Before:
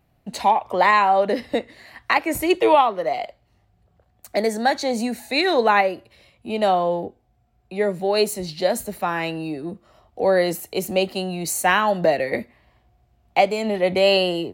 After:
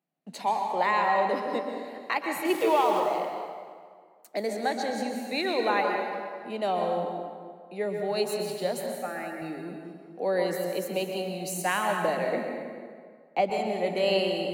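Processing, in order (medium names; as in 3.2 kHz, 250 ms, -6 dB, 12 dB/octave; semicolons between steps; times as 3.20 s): 2.45–3.00 s: jump at every zero crossing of -24 dBFS; gate -51 dBFS, range -10 dB; elliptic high-pass 160 Hz; 8.85–9.42 s: static phaser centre 670 Hz, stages 8; 12.29–13.50 s: tilt EQ -2 dB/octave; plate-style reverb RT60 1.9 s, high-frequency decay 0.7×, pre-delay 110 ms, DRR 2.5 dB; trim -9 dB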